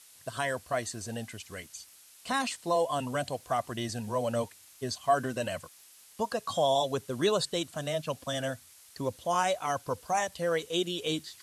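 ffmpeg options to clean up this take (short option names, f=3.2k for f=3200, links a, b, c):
-af "adeclick=t=4,afftdn=nr=20:nf=-56"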